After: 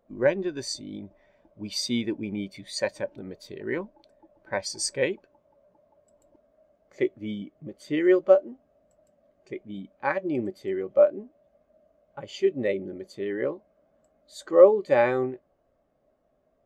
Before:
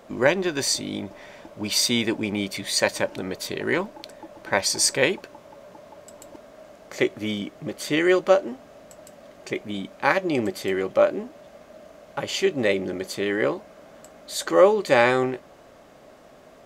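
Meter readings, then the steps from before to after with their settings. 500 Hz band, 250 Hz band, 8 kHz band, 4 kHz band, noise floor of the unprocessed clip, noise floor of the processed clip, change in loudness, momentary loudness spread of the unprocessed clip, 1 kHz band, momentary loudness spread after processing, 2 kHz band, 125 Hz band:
-1.0 dB, -3.5 dB, -10.5 dB, -10.0 dB, -50 dBFS, -70 dBFS, -2.5 dB, 16 LU, -6.5 dB, 20 LU, -9.0 dB, -5.5 dB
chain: low shelf 85 Hz +10.5 dB; spectral expander 1.5:1; gain -1.5 dB

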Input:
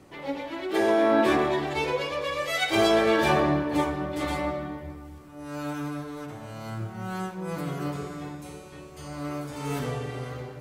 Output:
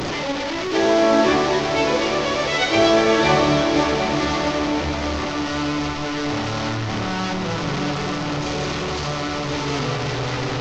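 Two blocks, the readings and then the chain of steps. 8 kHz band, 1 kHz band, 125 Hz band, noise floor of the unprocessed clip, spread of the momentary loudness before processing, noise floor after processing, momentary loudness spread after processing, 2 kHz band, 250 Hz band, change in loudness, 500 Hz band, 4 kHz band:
+11.0 dB, +7.5 dB, +8.0 dB, -44 dBFS, 18 LU, -25 dBFS, 8 LU, +7.5 dB, +7.0 dB, +6.5 dB, +6.5 dB, +10.5 dB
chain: delta modulation 32 kbps, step -24 dBFS; notch 1600 Hz, Q 21; diffused feedback echo 0.72 s, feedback 45%, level -6.5 dB; gain +5 dB

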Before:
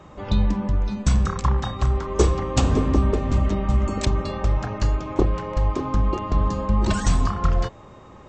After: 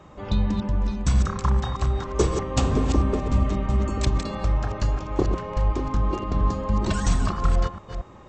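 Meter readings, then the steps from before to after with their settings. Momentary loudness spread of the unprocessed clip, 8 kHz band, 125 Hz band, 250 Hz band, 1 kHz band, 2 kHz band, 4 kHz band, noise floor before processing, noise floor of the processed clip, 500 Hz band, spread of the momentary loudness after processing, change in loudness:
4 LU, -1.5 dB, -2.0 dB, -2.0 dB, -2.0 dB, -1.5 dB, -1.5 dB, -45 dBFS, -46 dBFS, -2.0 dB, 3 LU, -2.0 dB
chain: reverse delay 0.229 s, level -7 dB; gain -2.5 dB

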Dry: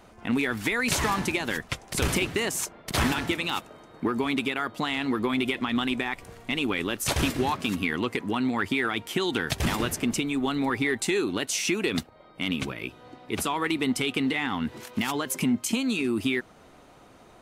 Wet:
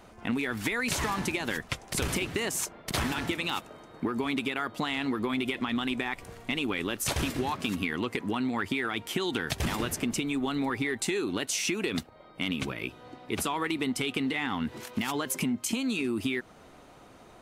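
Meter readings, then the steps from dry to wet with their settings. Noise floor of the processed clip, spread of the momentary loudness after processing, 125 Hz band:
-53 dBFS, 5 LU, -3.5 dB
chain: compressor, threshold -26 dBFS, peak gain reduction 6.5 dB

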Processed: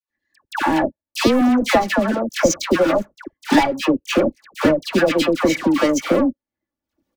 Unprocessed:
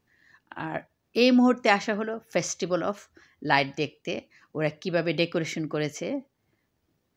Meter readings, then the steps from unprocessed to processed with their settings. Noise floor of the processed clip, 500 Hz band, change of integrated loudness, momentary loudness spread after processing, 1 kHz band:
under -85 dBFS, +9.0 dB, +8.0 dB, 7 LU, +8.5 dB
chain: recorder AGC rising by 12 dB/s; EQ curve 130 Hz 0 dB, 1100 Hz -4 dB, 2800 Hz -8 dB; harmonic-percussive split percussive +4 dB; low shelf 180 Hz -6 dB; comb 3.5 ms, depth 75%; sample leveller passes 5; transient shaper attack +5 dB, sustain -9 dB; dispersion lows, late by 0.104 s, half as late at 1100 Hz; gain -7 dB

